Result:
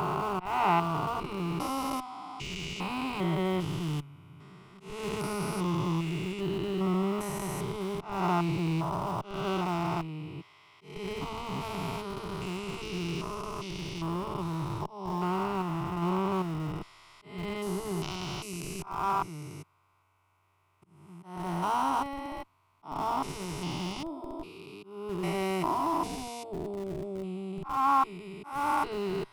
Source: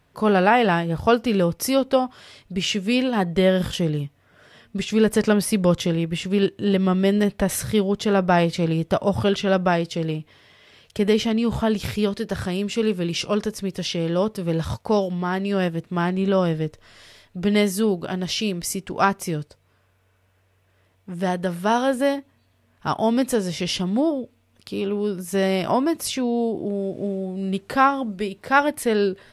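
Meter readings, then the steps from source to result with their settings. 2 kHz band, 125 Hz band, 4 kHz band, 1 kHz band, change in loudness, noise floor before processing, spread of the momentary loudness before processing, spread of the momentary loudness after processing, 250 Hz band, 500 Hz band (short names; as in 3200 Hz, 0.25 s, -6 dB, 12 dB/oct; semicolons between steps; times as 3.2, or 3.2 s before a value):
-12.5 dB, -8.0 dB, -12.0 dB, -5.0 dB, -10.0 dB, -63 dBFS, 9 LU, 13 LU, -12.0 dB, -13.5 dB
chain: stepped spectrum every 0.4 s; band shelf 1500 Hz +13 dB; auto swell 0.272 s; fixed phaser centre 340 Hz, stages 8; in parallel at -10.5 dB: Schmitt trigger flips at -26 dBFS; on the sum: gain -5.5 dB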